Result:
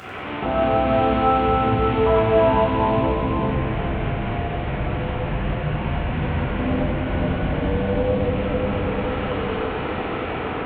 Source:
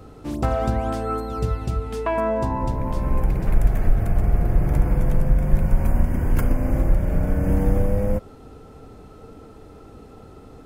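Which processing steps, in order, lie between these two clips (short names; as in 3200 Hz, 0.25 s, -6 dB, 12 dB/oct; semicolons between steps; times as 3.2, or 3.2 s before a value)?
delta modulation 16 kbps, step -29 dBFS; AGC gain up to 4.5 dB; split-band echo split 520 Hz, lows 0.543 s, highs 92 ms, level -5.5 dB; compressor, threshold -17 dBFS, peak gain reduction 11 dB; HPF 67 Hz 12 dB/oct; low shelf 420 Hz -12 dB; reverb RT60 3.1 s, pre-delay 5 ms, DRR -8 dB; dynamic EQ 1800 Hz, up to -7 dB, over -33 dBFS, Q 0.74; notch 540 Hz, Q 18; gain +1.5 dB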